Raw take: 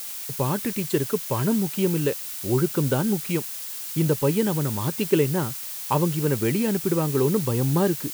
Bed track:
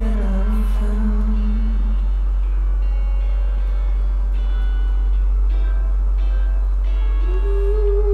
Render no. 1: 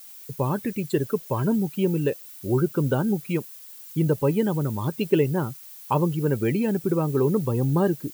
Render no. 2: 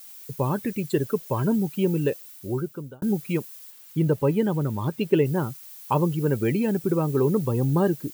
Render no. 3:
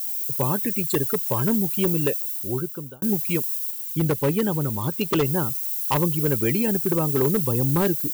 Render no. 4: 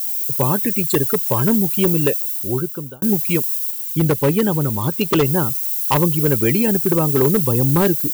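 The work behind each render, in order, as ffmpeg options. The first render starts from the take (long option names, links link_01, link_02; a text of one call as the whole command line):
ffmpeg -i in.wav -af "afftdn=noise_reduction=14:noise_floor=-34" out.wav
ffmpeg -i in.wav -filter_complex "[0:a]asettb=1/sr,asplit=3[link_01][link_02][link_03];[link_01]atrim=end=3.704[link_04];[link_02]atrim=start=3.7:end=5.26,asetpts=PTS-STARTPTS,afade=type=in:duration=0.004:curve=qsin,afade=type=out:start_time=1.556:duration=0.004:curve=qsin,bass=frequency=250:gain=0,treble=frequency=4000:gain=-5[link_05];[link_03]atrim=start=5.256[link_06];[link_04][link_05]acrossfade=duration=0.004:curve1=hsin:curve2=qsin[link_07];[link_07][link_06]acrossfade=duration=0.004:curve1=qsin:curve2=hsin,asplit=2[link_08][link_09];[link_08]atrim=end=3.02,asetpts=PTS-STARTPTS,afade=type=out:start_time=2.16:duration=0.86[link_10];[link_09]atrim=start=3.02,asetpts=PTS-STARTPTS,afade=type=in:duration=0.004:curve=hsin[link_11];[link_10][link_11]concat=n=2:v=0:a=1" out.wav
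ffmpeg -i in.wav -af "aeval=exprs='0.178*(abs(mod(val(0)/0.178+3,4)-2)-1)':channel_layout=same,crystalizer=i=3:c=0" out.wav
ffmpeg -i in.wav -af "volume=5.5dB" out.wav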